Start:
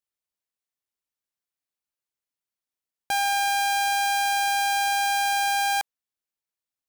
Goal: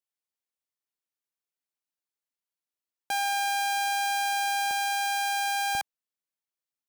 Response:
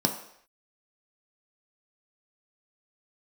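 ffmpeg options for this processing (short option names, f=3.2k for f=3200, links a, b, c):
-af "asetnsamples=n=441:p=0,asendcmd='4.71 highpass f 550;5.75 highpass f 120',highpass=170,volume=-4dB"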